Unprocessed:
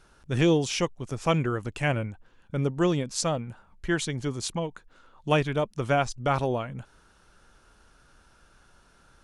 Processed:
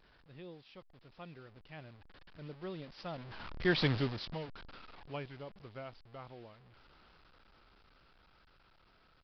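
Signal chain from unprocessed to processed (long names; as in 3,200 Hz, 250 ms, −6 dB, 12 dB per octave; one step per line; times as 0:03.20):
linear delta modulator 64 kbit/s, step −29 dBFS
source passing by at 0:03.85, 21 m/s, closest 2.4 metres
downsampling to 11,025 Hz
level +1.5 dB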